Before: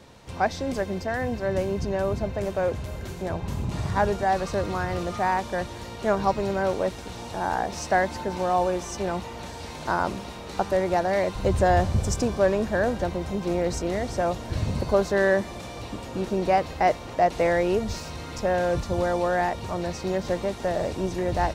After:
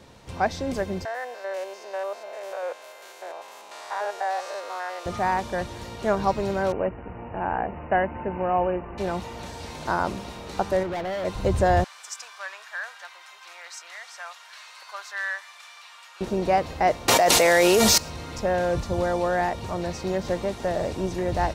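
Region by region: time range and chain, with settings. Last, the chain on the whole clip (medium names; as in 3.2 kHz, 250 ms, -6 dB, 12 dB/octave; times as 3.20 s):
1.05–5.06 s: spectrogram pixelated in time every 100 ms + high-pass 560 Hz 24 dB/octave
6.72–8.98 s: median filter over 15 samples + brick-wall FIR low-pass 3 kHz
10.83–11.25 s: distance through air 180 m + overload inside the chain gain 27.5 dB
11.84–16.21 s: high-pass 1.2 kHz 24 dB/octave + treble shelf 4.2 kHz -6 dB
17.08–17.98 s: RIAA curve recording + level flattener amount 100%
whole clip: none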